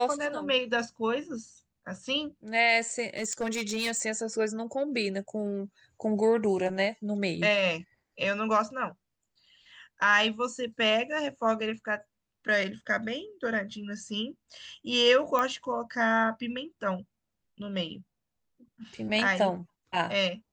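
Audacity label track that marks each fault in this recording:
3.160000	4.030000	clipped -26 dBFS
15.390000	15.390000	pop -15 dBFS

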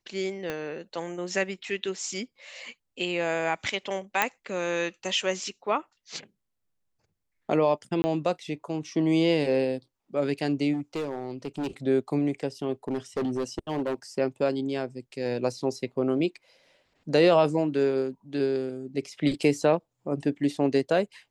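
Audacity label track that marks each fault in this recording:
0.500000	0.500000	pop -17 dBFS
4.220000	4.220000	pop -7 dBFS
8.020000	8.040000	gap 20 ms
10.730000	11.670000	clipped -26.5 dBFS
12.880000	13.940000	clipped -24 dBFS

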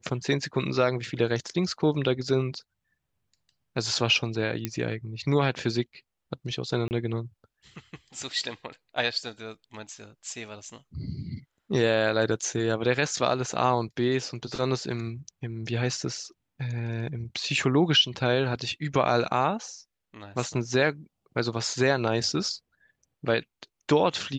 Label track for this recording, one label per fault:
4.650000	4.650000	pop -12 dBFS
6.880000	6.910000	gap 29 ms

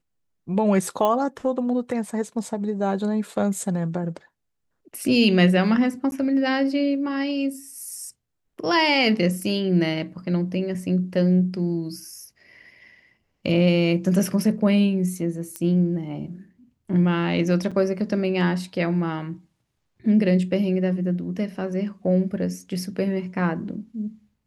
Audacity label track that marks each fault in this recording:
1.050000	1.050000	pop -11 dBFS
6.110000	6.120000	gap 11 ms
15.560000	15.560000	pop -16 dBFS
17.710000	17.720000	gap 5.8 ms

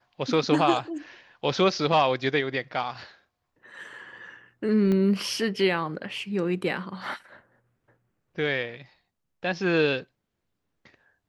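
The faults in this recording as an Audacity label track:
4.920000	4.920000	pop -17 dBFS

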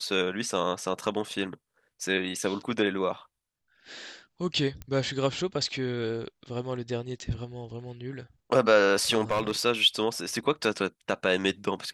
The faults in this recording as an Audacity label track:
4.820000	4.820000	pop -24 dBFS
9.230000	9.650000	clipped -21 dBFS

